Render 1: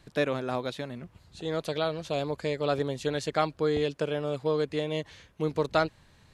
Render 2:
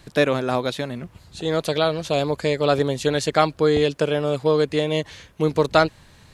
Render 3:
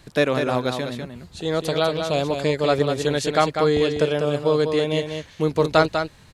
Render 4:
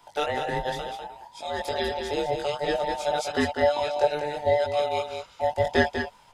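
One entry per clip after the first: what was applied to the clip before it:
high shelf 6100 Hz +4.5 dB; gain +8.5 dB
echo 0.197 s -6.5 dB; gain -1 dB
band inversion scrambler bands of 1000 Hz; chorus voices 6, 0.58 Hz, delay 20 ms, depth 1 ms; gain -2.5 dB

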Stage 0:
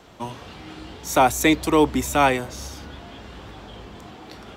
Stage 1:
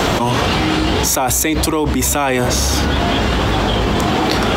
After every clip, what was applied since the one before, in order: fast leveller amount 100%; gain -2.5 dB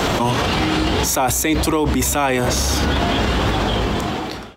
ending faded out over 1.27 s; limiter -11.5 dBFS, peak gain reduction 8.5 dB; gain +2 dB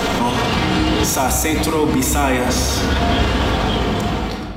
shoebox room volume 2800 m³, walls mixed, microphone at 1.7 m; gain -1.5 dB

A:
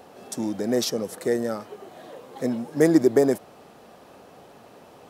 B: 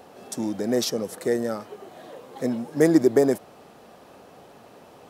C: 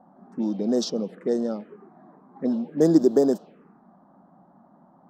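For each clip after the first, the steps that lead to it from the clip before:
nothing audible
resonant low shelf 140 Hz -9 dB, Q 3; envelope phaser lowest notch 410 Hz, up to 2200 Hz, full sweep at -19.5 dBFS; low-pass opened by the level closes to 780 Hz, open at -15.5 dBFS; gain -1.5 dB

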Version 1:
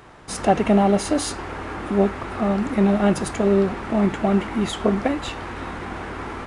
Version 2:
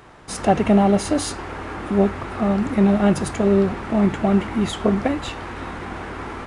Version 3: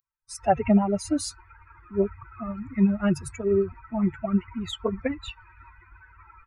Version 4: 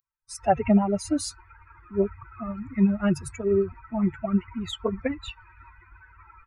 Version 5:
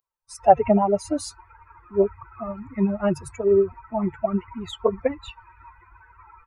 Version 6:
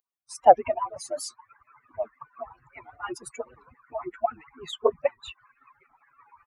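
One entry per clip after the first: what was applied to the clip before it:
dynamic EQ 110 Hz, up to +6 dB, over -36 dBFS, Q 1.1
per-bin expansion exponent 3
nothing audible
band shelf 660 Hz +9.5 dB; gain -2 dB
median-filter separation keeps percussive; HPF 190 Hz 6 dB/oct; record warp 78 rpm, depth 160 cents

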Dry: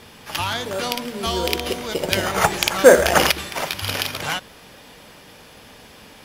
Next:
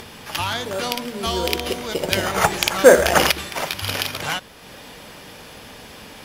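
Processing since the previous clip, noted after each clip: upward compressor, threshold -33 dBFS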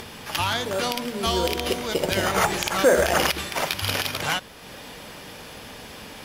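limiter -9.5 dBFS, peak gain reduction 8.5 dB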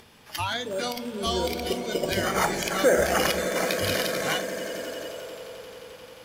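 swelling echo 88 ms, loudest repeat 8, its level -14.5 dB; spectral noise reduction 11 dB; gain -3 dB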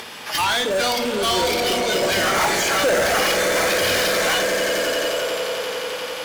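overdrive pedal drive 29 dB, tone 7800 Hz, clips at -10.5 dBFS; on a send: flutter echo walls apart 8.9 m, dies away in 0.28 s; on the sum: gain -2.5 dB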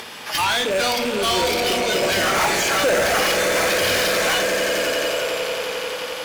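rattling part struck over -40 dBFS, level -19 dBFS

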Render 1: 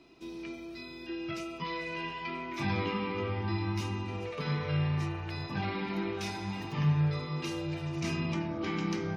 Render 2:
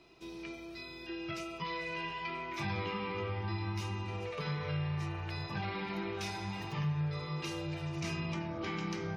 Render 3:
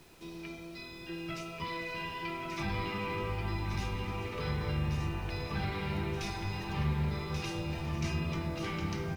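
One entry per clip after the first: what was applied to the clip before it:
bell 260 Hz -11 dB 0.51 oct; compressor 2:1, threshold -35 dBFS, peak gain reduction 6.5 dB
octaver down 1 oct, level -2 dB; added noise pink -60 dBFS; echo 1.134 s -5 dB

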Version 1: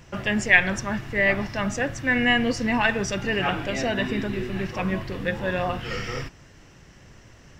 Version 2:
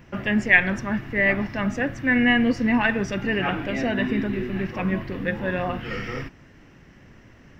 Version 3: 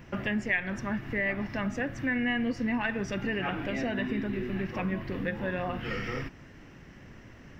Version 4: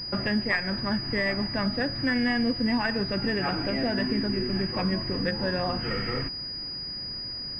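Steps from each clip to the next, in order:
graphic EQ 250/2000/4000/8000 Hz +7/+4/-3/-11 dB; gain -2 dB
compressor 2.5:1, threshold -31 dBFS, peak gain reduction 14 dB
pulse-width modulation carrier 4900 Hz; gain +4 dB

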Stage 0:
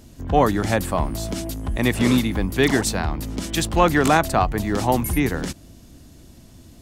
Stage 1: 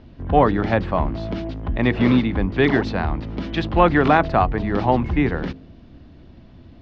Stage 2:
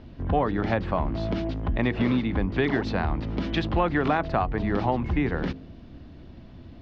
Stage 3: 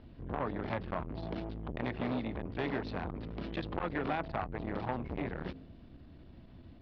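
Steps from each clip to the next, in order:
Bessel low-pass 2500 Hz, order 8; de-hum 52.58 Hz, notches 9; gain +2 dB
compressor 3:1, threshold -22 dBFS, peak gain reduction 10 dB
steep low-pass 5100 Hz 36 dB/oct; core saturation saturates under 950 Hz; gain -7.5 dB

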